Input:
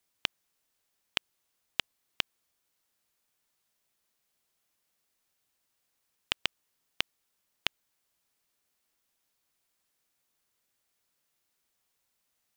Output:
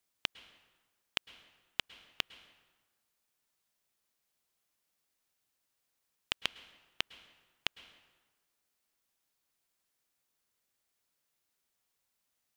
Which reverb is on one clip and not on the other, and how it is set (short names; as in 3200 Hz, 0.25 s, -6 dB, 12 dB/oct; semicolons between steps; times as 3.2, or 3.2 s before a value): plate-style reverb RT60 1.3 s, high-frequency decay 0.7×, pre-delay 95 ms, DRR 16.5 dB; gain -3.5 dB